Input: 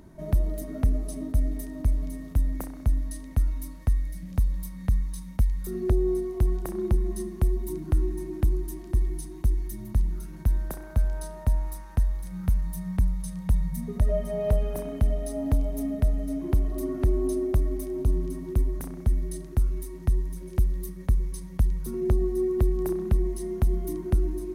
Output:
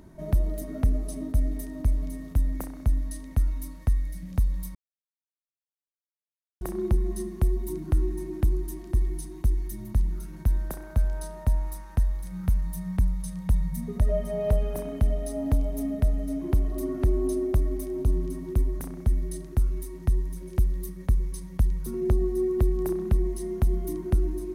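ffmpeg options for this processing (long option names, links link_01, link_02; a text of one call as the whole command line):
ffmpeg -i in.wav -filter_complex "[0:a]asplit=3[link_01][link_02][link_03];[link_01]atrim=end=4.75,asetpts=PTS-STARTPTS,afade=type=out:start_time=4.746:duration=0.004:curve=hsin[link_04];[link_02]atrim=start=4.75:end=6.61,asetpts=PTS-STARTPTS,volume=0[link_05];[link_03]atrim=start=6.61,asetpts=PTS-STARTPTS,afade=type=in:duration=0.004:curve=hsin[link_06];[link_04][link_05][link_06]concat=n=3:v=0:a=1" out.wav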